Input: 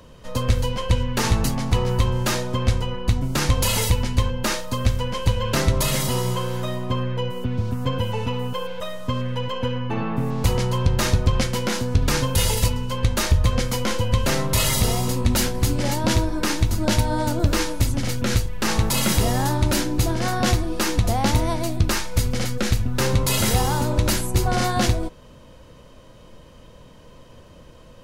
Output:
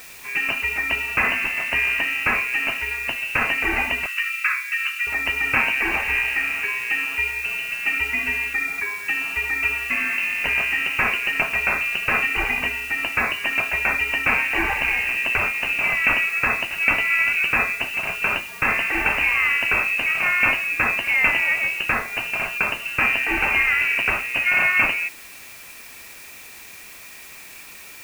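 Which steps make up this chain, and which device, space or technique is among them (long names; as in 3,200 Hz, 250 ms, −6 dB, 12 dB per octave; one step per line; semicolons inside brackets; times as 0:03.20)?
scrambled radio voice (band-pass filter 300–3,000 Hz; voice inversion scrambler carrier 2,900 Hz; white noise bed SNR 20 dB)
0:04.06–0:05.07: Butterworth high-pass 1,200 Hz 48 dB per octave
level +6 dB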